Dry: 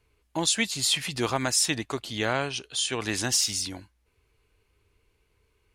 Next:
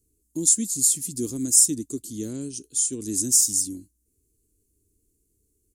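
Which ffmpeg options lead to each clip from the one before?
ffmpeg -i in.wav -af "firequalizer=gain_entry='entry(130,0);entry(280,10);entry(720,-27);entry(1600,-26);entry(2300,-24);entry(7100,14)':delay=0.05:min_phase=1,volume=-3.5dB" out.wav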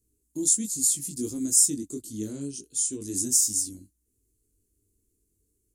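ffmpeg -i in.wav -af "flanger=delay=18.5:depth=2.8:speed=1.4" out.wav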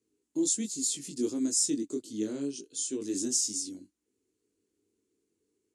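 ffmpeg -i in.wav -af "highpass=310,lowpass=4000,volume=5dB" out.wav

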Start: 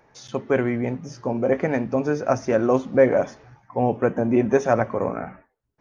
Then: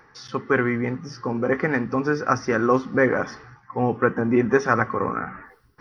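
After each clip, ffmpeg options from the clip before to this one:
ffmpeg -i in.wav -af "superequalizer=8b=0.355:10b=2.82:11b=2.24:14b=1.78:15b=0.316,areverse,acompressor=mode=upward:threshold=-34dB:ratio=2.5,areverse" out.wav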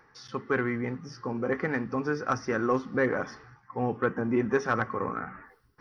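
ffmpeg -i in.wav -af "asoftclip=type=tanh:threshold=-5dB,volume=-6.5dB" out.wav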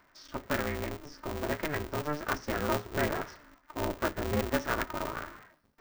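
ffmpeg -i in.wav -af "aeval=exprs='val(0)*sgn(sin(2*PI*150*n/s))':channel_layout=same,volume=-4dB" out.wav

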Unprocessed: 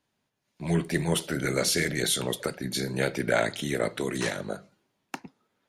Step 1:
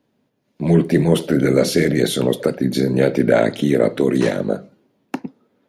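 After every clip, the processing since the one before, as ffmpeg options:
ffmpeg -i in.wav -filter_complex "[0:a]equalizer=frequency=125:width_type=o:width=1:gain=5,equalizer=frequency=250:width_type=o:width=1:gain=11,equalizer=frequency=500:width_type=o:width=1:gain=9,equalizer=frequency=8000:width_type=o:width=1:gain=-6,asplit=2[link_01][link_02];[link_02]alimiter=limit=-11.5dB:level=0:latency=1:release=15,volume=-2.5dB[link_03];[link_01][link_03]amix=inputs=2:normalize=0,volume=-1dB" out.wav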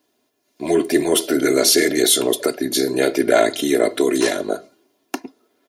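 ffmpeg -i in.wav -af "bass=frequency=250:gain=-13,treble=frequency=4000:gain=11,aecho=1:1:2.9:0.71" out.wav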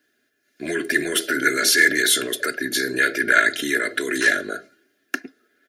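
ffmpeg -i in.wav -filter_complex "[0:a]acrossover=split=790[link_01][link_02];[link_01]alimiter=limit=-15.5dB:level=0:latency=1:release=37[link_03];[link_02]highpass=frequency=1600:width_type=q:width=8.9[link_04];[link_03][link_04]amix=inputs=2:normalize=0,volume=-3.5dB" out.wav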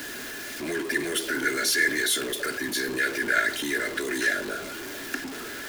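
ffmpeg -i in.wav -af "aeval=exprs='val(0)+0.5*0.0794*sgn(val(0))':channel_layout=same,volume=-8.5dB" out.wav

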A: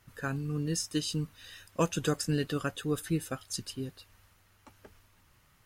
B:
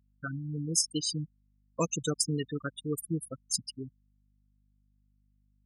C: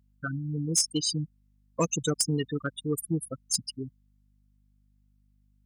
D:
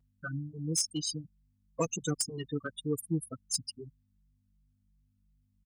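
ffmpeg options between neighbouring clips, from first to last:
ffmpeg -i in.wav -af "crystalizer=i=3:c=0,afftfilt=real='re*gte(hypot(re,im),0.0891)':imag='im*gte(hypot(re,im),0.0891)':win_size=1024:overlap=0.75,aeval=exprs='val(0)+0.000501*(sin(2*PI*50*n/s)+sin(2*PI*2*50*n/s)/2+sin(2*PI*3*50*n/s)/3+sin(2*PI*4*50*n/s)/4+sin(2*PI*5*50*n/s)/5)':channel_layout=same,volume=-2dB" out.wav
ffmpeg -i in.wav -af "aeval=exprs='0.266*sin(PI/2*1.58*val(0)/0.266)':channel_layout=same,volume=-4dB" out.wav
ffmpeg -i in.wav -filter_complex "[0:a]asplit=2[link_01][link_02];[link_02]adelay=3.8,afreqshift=-2.8[link_03];[link_01][link_03]amix=inputs=2:normalize=1,volume=-2dB" out.wav

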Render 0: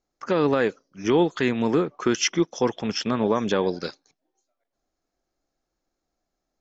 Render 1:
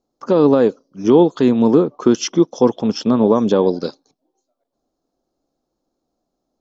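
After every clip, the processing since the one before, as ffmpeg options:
ffmpeg -i in.wav -af "equalizer=frequency=125:width_type=o:width=1:gain=5,equalizer=frequency=250:width_type=o:width=1:gain=10,equalizer=frequency=500:width_type=o:width=1:gain=7,equalizer=frequency=1000:width_type=o:width=1:gain=7,equalizer=frequency=2000:width_type=o:width=1:gain=-11,equalizer=frequency=4000:width_type=o:width=1:gain=5,volume=-1dB" out.wav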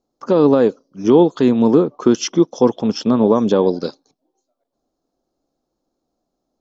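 ffmpeg -i in.wav -af anull out.wav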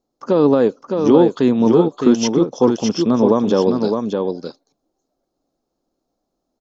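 ffmpeg -i in.wav -af "aecho=1:1:612:0.562,volume=-1dB" out.wav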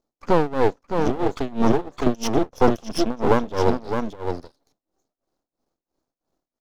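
ffmpeg -i in.wav -af "aeval=exprs='max(val(0),0)':channel_layout=same,tremolo=f=3:d=0.92,volume=2.5dB" out.wav

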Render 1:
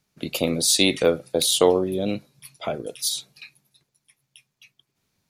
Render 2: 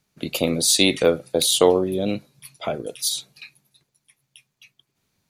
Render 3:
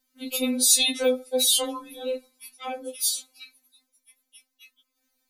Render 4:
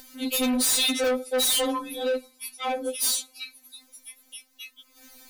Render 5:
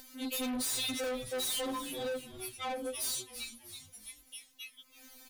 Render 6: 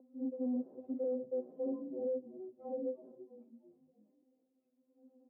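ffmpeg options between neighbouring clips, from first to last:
ffmpeg -i in.wav -af "bandreject=frequency=5300:width=23,volume=1.5dB" out.wav
ffmpeg -i in.wav -filter_complex "[0:a]highshelf=frequency=9400:gain=11.5,acrossover=split=150|470|4000[link_01][link_02][link_03][link_04];[link_02]alimiter=limit=-21dB:level=0:latency=1[link_05];[link_01][link_05][link_03][link_04]amix=inputs=4:normalize=0,afftfilt=real='re*3.46*eq(mod(b,12),0)':imag='im*3.46*eq(mod(b,12),0)':win_size=2048:overlap=0.75,volume=-2.5dB" out.wav
ffmpeg -i in.wav -af "acompressor=mode=upward:threshold=-43dB:ratio=2.5,asoftclip=type=tanh:threshold=-28.5dB,volume=7.5dB" out.wav
ffmpeg -i in.wav -filter_complex "[0:a]asplit=5[link_01][link_02][link_03][link_04][link_05];[link_02]adelay=329,afreqshift=-140,volume=-17dB[link_06];[link_03]adelay=658,afreqshift=-280,volume=-22.8dB[link_07];[link_04]adelay=987,afreqshift=-420,volume=-28.7dB[link_08];[link_05]adelay=1316,afreqshift=-560,volume=-34.5dB[link_09];[link_01][link_06][link_07][link_08][link_09]amix=inputs=5:normalize=0,acompressor=threshold=-25dB:ratio=6,asoftclip=type=tanh:threshold=-27.5dB,volume=-4.5dB" out.wav
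ffmpeg -i in.wav -af "asuperpass=centerf=340:order=8:qfactor=0.81,volume=1dB" out.wav

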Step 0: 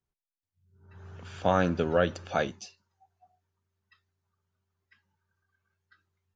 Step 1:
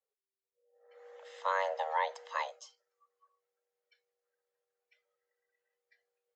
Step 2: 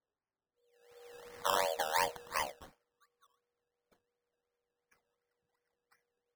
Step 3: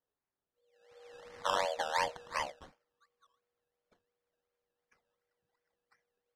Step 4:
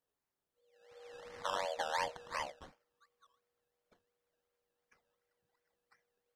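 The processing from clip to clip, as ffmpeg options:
ffmpeg -i in.wav -af "afreqshift=390,volume=-7.5dB" out.wav
ffmpeg -i in.wav -af "acrusher=samples=16:mix=1:aa=0.000001:lfo=1:lforange=9.6:lforate=2.8" out.wav
ffmpeg -i in.wav -af "lowpass=6200" out.wav
ffmpeg -i in.wav -af "alimiter=level_in=2dB:limit=-24dB:level=0:latency=1:release=344,volume=-2dB,volume=1dB" out.wav

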